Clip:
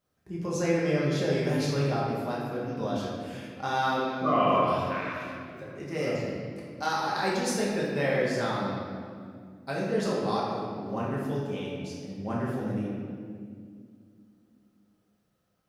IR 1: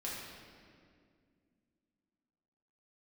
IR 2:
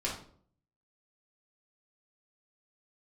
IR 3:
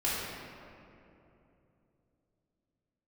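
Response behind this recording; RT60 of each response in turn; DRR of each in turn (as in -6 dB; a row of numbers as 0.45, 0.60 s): 1; 2.2, 0.55, 2.9 s; -6.5, -5.5, -9.5 dB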